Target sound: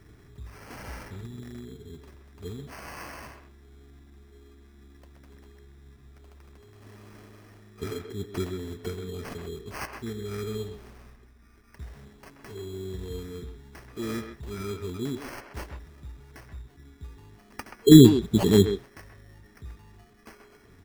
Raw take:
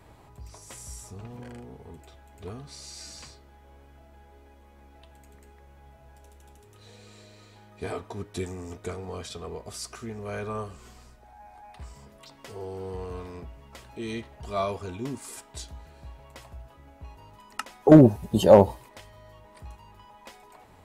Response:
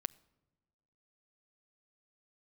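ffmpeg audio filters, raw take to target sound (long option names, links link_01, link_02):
-filter_complex "[0:a]afftfilt=real='re*(1-between(b*sr/4096,460,1700))':imag='im*(1-between(b*sr/4096,460,1700))':win_size=4096:overlap=0.75,acrusher=samples=12:mix=1:aa=0.000001,asplit=2[link_01][link_02];[link_02]adelay=130,highpass=300,lowpass=3400,asoftclip=type=hard:threshold=-12dB,volume=-7dB[link_03];[link_01][link_03]amix=inputs=2:normalize=0,volume=2dB"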